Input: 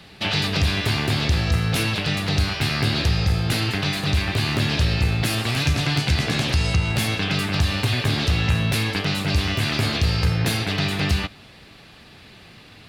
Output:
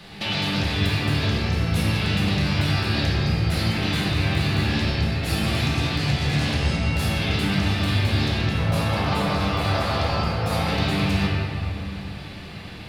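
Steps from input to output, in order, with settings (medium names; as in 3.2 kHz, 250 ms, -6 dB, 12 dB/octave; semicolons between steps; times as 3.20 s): 8.58–10.66 s: high-order bell 810 Hz +10.5 dB; peak limiter -15.5 dBFS, peak gain reduction 10 dB; compression 3:1, threshold -29 dBFS, peak gain reduction 7.5 dB; simulated room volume 120 m³, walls hard, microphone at 0.79 m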